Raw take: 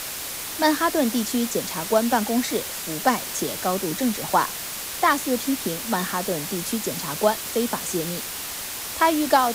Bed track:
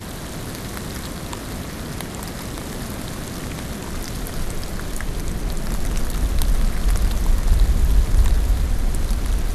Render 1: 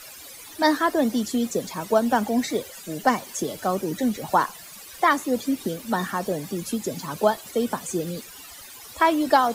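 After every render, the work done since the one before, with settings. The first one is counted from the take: noise reduction 16 dB, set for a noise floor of -32 dBFS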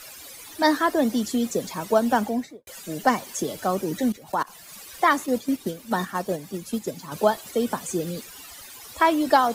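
2.17–2.67 s: studio fade out; 4.12–4.69 s: level held to a coarse grid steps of 23 dB; 5.26–7.12 s: gate -28 dBFS, range -6 dB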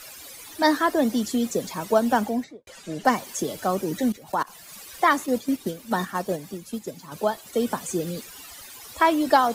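2.44–3.05 s: distance through air 62 m; 6.54–7.53 s: gain -4 dB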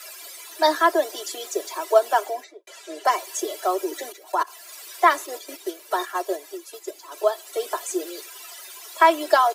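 steep high-pass 350 Hz 72 dB/octave; comb 3 ms, depth 74%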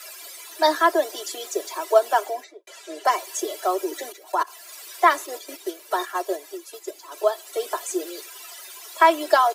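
no audible change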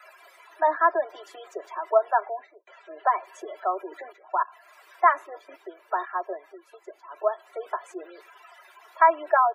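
three-band isolator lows -15 dB, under 590 Hz, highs -23 dB, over 2.1 kHz; spectral gate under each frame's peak -25 dB strong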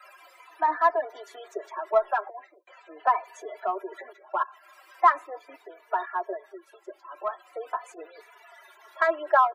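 in parallel at -9 dB: saturation -19 dBFS, distortion -9 dB; on the sum: endless flanger 3.3 ms -0.42 Hz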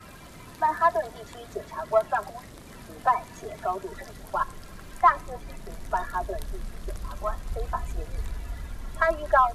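add bed track -16.5 dB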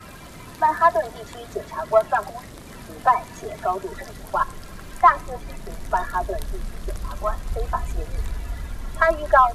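trim +5 dB; peak limiter -3 dBFS, peak gain reduction 1 dB

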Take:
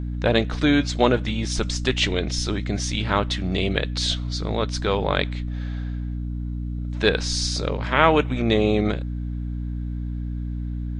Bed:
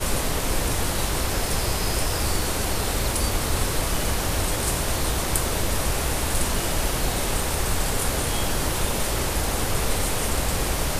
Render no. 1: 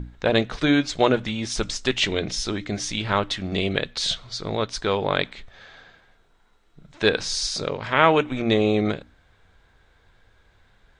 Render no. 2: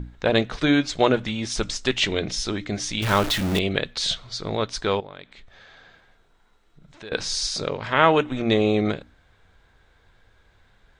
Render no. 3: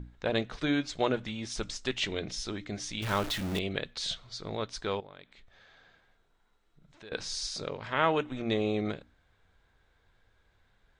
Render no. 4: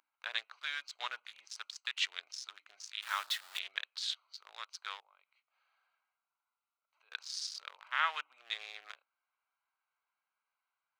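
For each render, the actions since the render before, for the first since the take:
hum notches 60/120/180/240/300 Hz
3.02–3.59 s: jump at every zero crossing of -23 dBFS; 5.00–7.12 s: compression 2.5:1, threshold -46 dBFS; 7.88–8.45 s: band-stop 2.3 kHz
trim -9.5 dB
local Wiener filter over 25 samples; high-pass 1.2 kHz 24 dB/octave

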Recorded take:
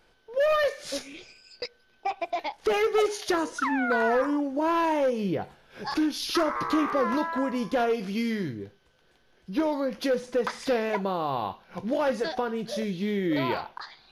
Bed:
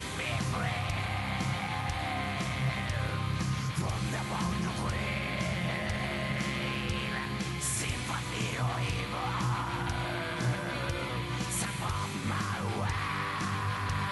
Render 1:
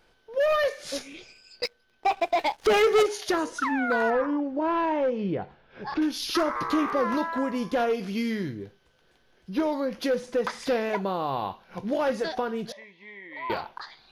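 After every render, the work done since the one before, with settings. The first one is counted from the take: 1.63–3.03 s: waveshaping leveller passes 2; 4.10–6.02 s: distance through air 240 m; 12.72–13.50 s: two resonant band-passes 1.4 kHz, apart 1 oct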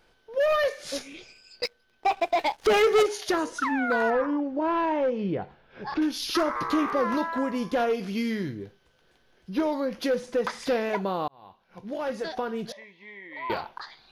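11.28–12.67 s: fade in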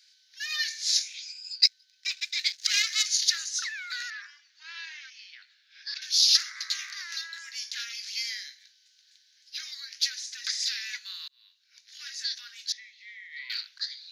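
steep high-pass 1.7 kHz 48 dB/octave; high-order bell 5.2 kHz +14 dB 1.1 oct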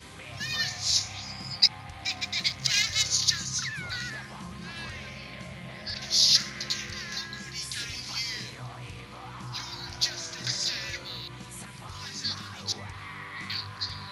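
add bed -9.5 dB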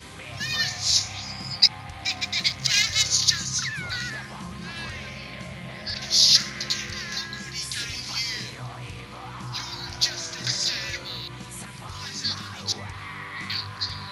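trim +4 dB; peak limiter -3 dBFS, peak gain reduction 1.5 dB

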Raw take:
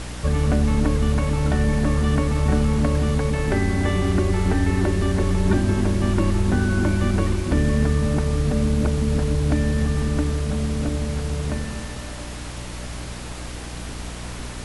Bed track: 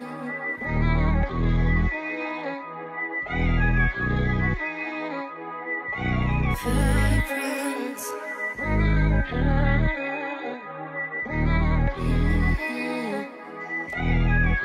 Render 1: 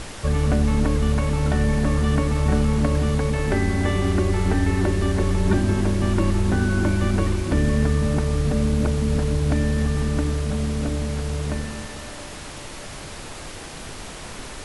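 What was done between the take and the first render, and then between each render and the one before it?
hum notches 60/120/180/240/300 Hz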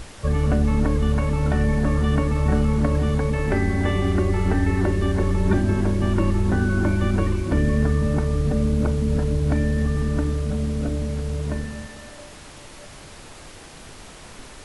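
noise print and reduce 6 dB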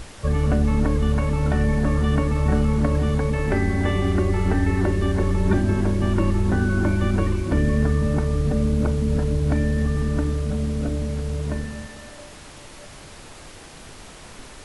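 no audible change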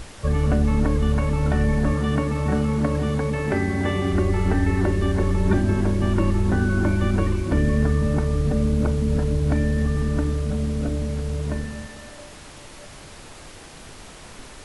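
1.93–4.13 s: high-pass 92 Hz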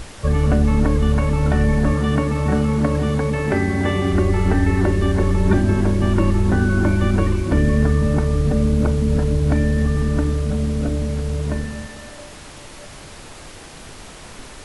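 trim +3.5 dB

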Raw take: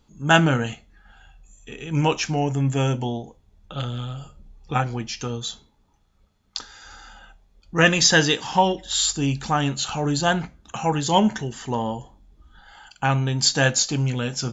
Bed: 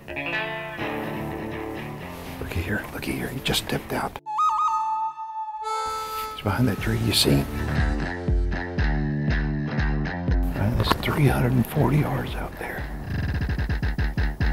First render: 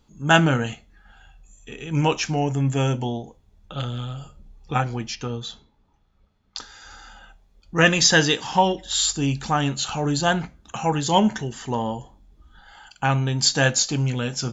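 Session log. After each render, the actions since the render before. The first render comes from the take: 5.15–6.57 s: distance through air 120 m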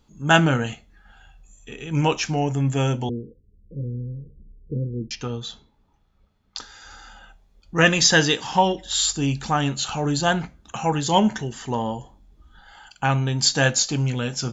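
3.09–5.11 s: steep low-pass 510 Hz 96 dB/octave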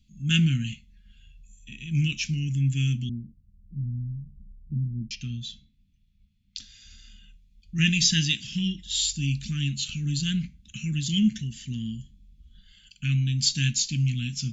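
Chebyshev band-stop 210–2500 Hz, order 3; treble shelf 5 kHz -6.5 dB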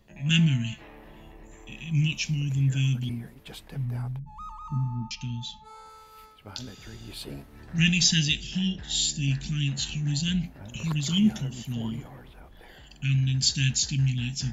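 add bed -20 dB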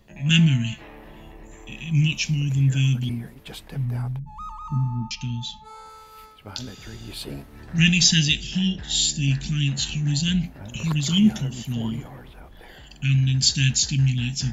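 trim +4.5 dB

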